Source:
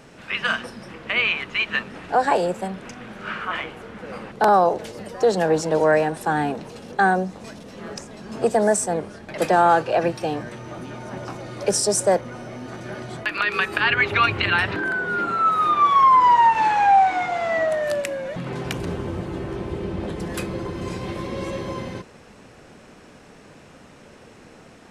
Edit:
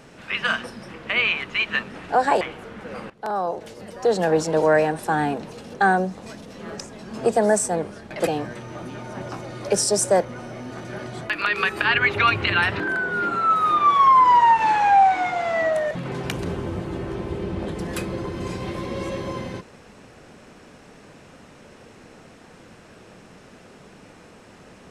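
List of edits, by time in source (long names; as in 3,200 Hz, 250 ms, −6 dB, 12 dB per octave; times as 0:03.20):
0:02.41–0:03.59: remove
0:04.28–0:05.51: fade in, from −16.5 dB
0:09.45–0:10.23: remove
0:17.87–0:18.32: remove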